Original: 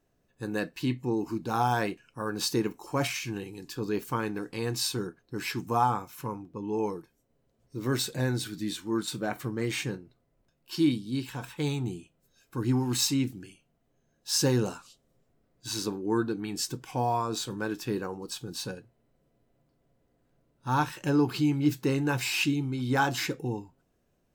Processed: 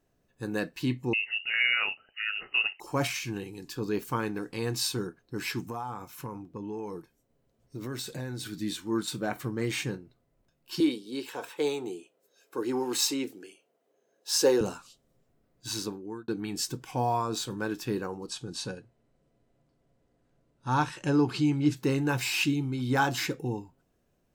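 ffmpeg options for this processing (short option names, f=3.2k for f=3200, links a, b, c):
-filter_complex "[0:a]asettb=1/sr,asplit=3[a][b][c];[a]atrim=end=1.134[d];[b]atrim=start=1.13:end=2.8,asetpts=PTS-STARTPTS,afade=t=in:d=0.004:c=qsin,afade=t=out:st=1.666:d=0.004:c=qsin,lowpass=f=2.6k:t=q:w=0.5098,lowpass=f=2.6k:t=q:w=0.6013,lowpass=f=2.6k:t=q:w=0.9,lowpass=f=2.6k:t=q:w=2.563,afreqshift=-3000[e];[c]atrim=start=2.796[f];[d][e]acrossfade=d=0.004:c1=hsin:c2=qsin[g];[g][f]acrossfade=d=0.004:c1=qsin:c2=hsin,asettb=1/sr,asplit=3[h][i][j];[h]atrim=end=5.664[k];[i]atrim=start=5.66:end=8.47,asetpts=PTS-STARTPTS,afade=t=in:d=0.004:c=qsin,afade=t=out:st=2.806:d=0.004:c=qsin,acompressor=threshold=-33dB:ratio=5:attack=3.2:release=140:knee=1:detection=peak[l];[j]atrim=start=8.466[m];[k][l]acrossfade=d=0.004:c1=hsin:c2=qsin[n];[n][m]acrossfade=d=0.004:c1=qsin:c2=hsin,asettb=1/sr,asplit=3[o][p][q];[o]atrim=end=10.804[r];[p]atrim=start=10.8:end=14.61,asetpts=PTS-STARTPTS,afade=t=in:d=0.004:c=qsin,afade=t=out:st=3.806:d=0.004:c=qsin,highpass=f=440:t=q:w=2.6[s];[q]atrim=start=14.606[t];[r][s]acrossfade=d=0.004:c1=hsin:c2=qsin[u];[u][t]acrossfade=d=0.004:c1=qsin:c2=hsin,asplit=3[v][w][x];[v]afade=t=out:st=18.26:d=0.02[y];[w]lowpass=f=9.8k:w=0.5412,lowpass=f=9.8k:w=1.3066,afade=t=in:st=18.26:d=0.02,afade=t=out:st=21.75:d=0.02[z];[x]afade=t=in:st=21.75:d=0.02[aa];[y][z][aa]amix=inputs=3:normalize=0,asplit=2[ab][ac];[ab]atrim=end=16.28,asetpts=PTS-STARTPTS,afade=t=out:st=15.71:d=0.57[ad];[ac]atrim=start=16.28,asetpts=PTS-STARTPTS,afade=t=in:d=0.004:c=hsin[ae];[ad][ae]concat=n=2:v=0:a=1"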